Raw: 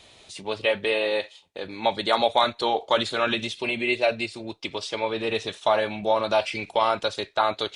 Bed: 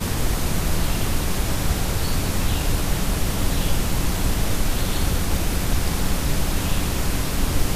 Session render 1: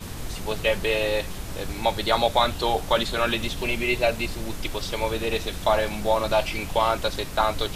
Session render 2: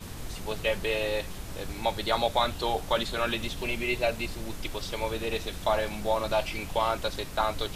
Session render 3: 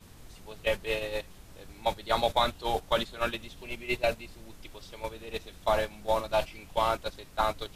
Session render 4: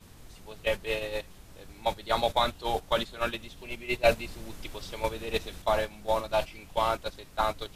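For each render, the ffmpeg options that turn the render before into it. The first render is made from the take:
-filter_complex "[1:a]volume=-11.5dB[a];[0:a][a]amix=inputs=2:normalize=0"
-af "volume=-5dB"
-af "agate=range=-12dB:threshold=-27dB:ratio=16:detection=peak"
-filter_complex "[0:a]asettb=1/sr,asplit=3[a][b][c];[a]atrim=end=4.054[d];[b]atrim=start=4.05:end=5.62,asetpts=PTS-STARTPTS,afade=t=in:d=0.004:c=qsin,afade=t=out:st=1.566:d=0.004:c=qsin,acontrast=65[e];[c]atrim=start=5.616[f];[d][e]acrossfade=d=0.004:c1=hsin:c2=qsin[g];[g][f]acrossfade=d=0.004:c1=qsin:c2=hsin"

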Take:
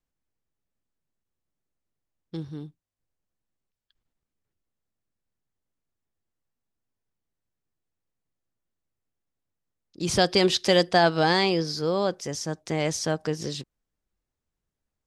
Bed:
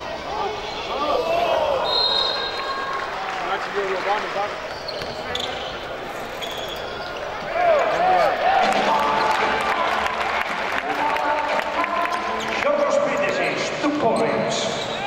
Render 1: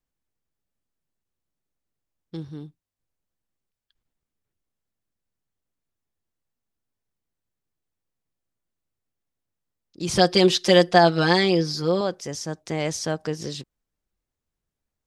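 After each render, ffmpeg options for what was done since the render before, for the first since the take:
-filter_complex "[0:a]asettb=1/sr,asplit=3[a][b][c];[a]atrim=end=10.154[d];[b]atrim=start=10.15:end=12.01,asetpts=PTS-STARTPTS,afade=t=in:d=0.004:c=qsin,afade=t=out:st=1.856:d=0.004:c=qsin,aecho=1:1:5.7:0.81,atrim=end_sample=82026[e];[c]atrim=start=12.006[f];[d][e]acrossfade=d=0.004:c1=hsin:c2=qsin[g];[g][f]acrossfade=d=0.004:c1=qsin:c2=hsin"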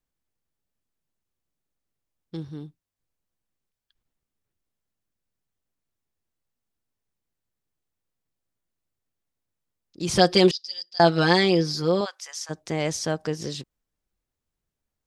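-filter_complex "[0:a]asettb=1/sr,asplit=3[a][b][c];[a]atrim=end=10.514[d];[b]atrim=start=10.51:end=11,asetpts=PTS-STARTPTS,afade=t=in:d=0.004:c=qsin,afade=t=out:st=0.486:d=0.004:c=qsin,bandpass=f=4.9k:t=q:w=14[e];[c]atrim=start=10.996[f];[d][e]acrossfade=d=0.004:c1=hsin:c2=qsin[g];[g][f]acrossfade=d=0.004:c1=qsin:c2=hsin,asplit=3[h][i][j];[h]afade=t=out:st=12.04:d=0.02[k];[i]highpass=f=980:w=0.5412,highpass=f=980:w=1.3066,afade=t=in:st=12.04:d=0.02,afade=t=out:st=12.49:d=0.02[l];[j]afade=t=in:st=12.49:d=0.02[m];[k][l][m]amix=inputs=3:normalize=0"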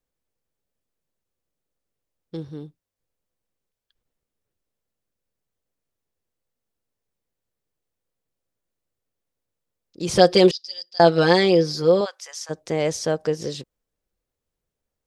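-af "equalizer=f=500:t=o:w=0.66:g=8"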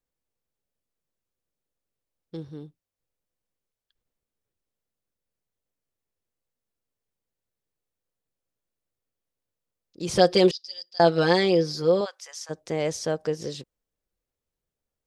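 -af "volume=-4dB"

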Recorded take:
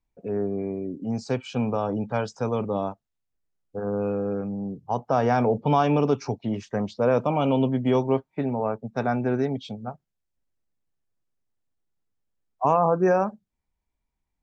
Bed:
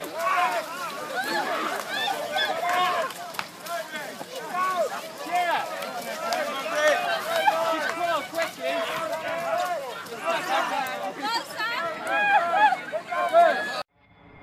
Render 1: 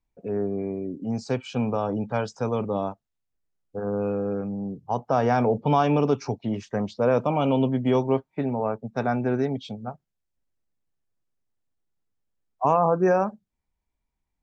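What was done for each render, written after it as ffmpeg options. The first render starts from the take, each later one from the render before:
-af anull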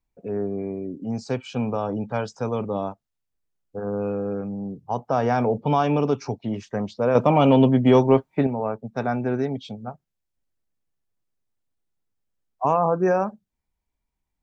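-filter_complex "[0:a]asettb=1/sr,asplit=3[a][b][c];[a]atrim=end=7.154[d];[b]atrim=start=7.15:end=8.47,asetpts=PTS-STARTPTS,afade=t=in:d=0.004:c=qsin,afade=t=out:st=1.316:d=0.004:c=qsin,acontrast=71[e];[c]atrim=start=8.466[f];[d][e]acrossfade=d=0.004:c1=hsin:c2=qsin[g];[g][f]acrossfade=d=0.004:c1=qsin:c2=hsin"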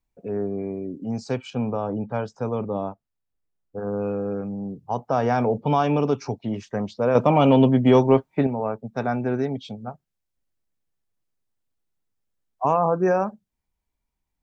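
-filter_complex "[0:a]asettb=1/sr,asplit=3[a][b][c];[a]atrim=end=1.504[d];[b]atrim=start=1.5:end=3.78,asetpts=PTS-STARTPTS,afade=t=in:d=0.004:c=qsin,afade=t=out:st=2.276:d=0.004:c=qsin,highshelf=f=2.4k:g=-10[e];[c]atrim=start=3.776[f];[d][e]acrossfade=d=0.004:c1=hsin:c2=qsin[g];[g][f]acrossfade=d=0.004:c1=qsin:c2=hsin"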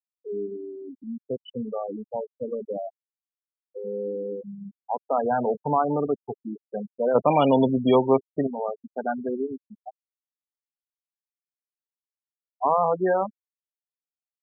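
-af "aemphasis=mode=production:type=bsi,afftfilt=real='re*gte(hypot(re,im),0.141)':imag='im*gte(hypot(re,im),0.141)':win_size=1024:overlap=0.75"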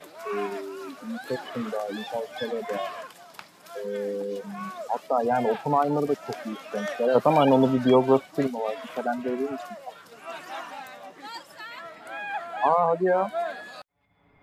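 -filter_complex "[1:a]volume=-12dB[a];[0:a][a]amix=inputs=2:normalize=0"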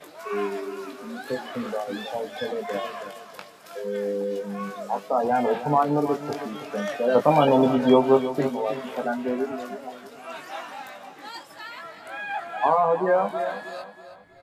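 -filter_complex "[0:a]asplit=2[a][b];[b]adelay=20,volume=-6dB[c];[a][c]amix=inputs=2:normalize=0,asplit=2[d][e];[e]aecho=0:1:320|640|960|1280:0.251|0.1|0.0402|0.0161[f];[d][f]amix=inputs=2:normalize=0"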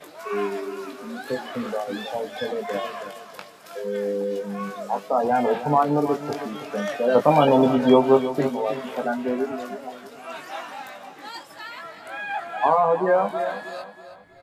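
-af "volume=1.5dB"

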